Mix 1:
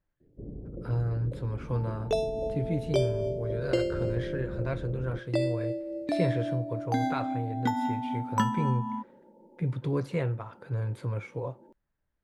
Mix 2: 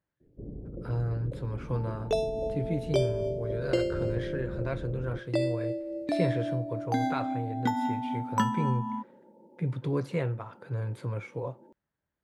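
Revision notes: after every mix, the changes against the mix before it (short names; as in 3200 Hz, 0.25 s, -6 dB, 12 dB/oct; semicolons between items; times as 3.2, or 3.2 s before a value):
speech: add HPF 94 Hz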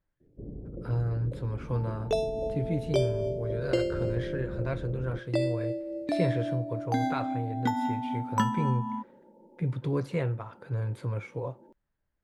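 speech: remove HPF 94 Hz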